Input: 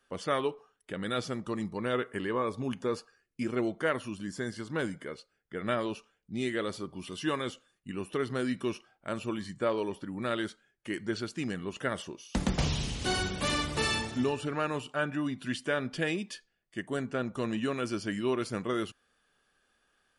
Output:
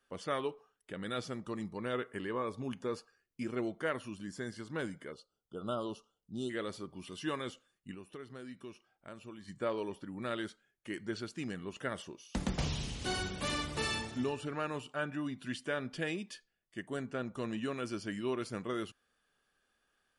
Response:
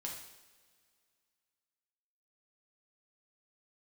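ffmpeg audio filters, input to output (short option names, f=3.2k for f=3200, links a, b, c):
-filter_complex "[0:a]asplit=3[a][b][c];[a]afade=t=out:st=5.11:d=0.02[d];[b]asuperstop=centerf=2000:order=12:qfactor=1.4,afade=t=in:st=5.11:d=0.02,afade=t=out:st=6.49:d=0.02[e];[c]afade=t=in:st=6.49:d=0.02[f];[d][e][f]amix=inputs=3:normalize=0,asettb=1/sr,asplit=3[g][h][i];[g]atrim=end=7.944[j];[h]atrim=start=7.94:end=9.48,asetpts=PTS-STARTPTS,afade=t=in:d=0.004:c=qsin,afade=t=out:st=1.536:d=0.004:c=qsin,acompressor=threshold=-47dB:ratio=2[k];[i]atrim=start=9.476[l];[j][k]acrossfade=d=0.004:c1=hsin:c2=qsin[m];[m][l]acrossfade=d=0.004:c1=qsin:c2=hsin,volume=-5.5dB"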